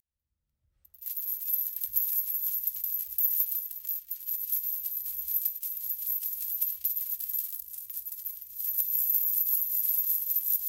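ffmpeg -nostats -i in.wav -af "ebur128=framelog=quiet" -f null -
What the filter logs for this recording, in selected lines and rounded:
Integrated loudness:
  I:         -27.9 LUFS
  Threshold: -38.0 LUFS
Loudness range:
  LRA:         3.1 LU
  Threshold: -48.6 LUFS
  LRA low:   -30.0 LUFS
  LRA high:  -26.9 LUFS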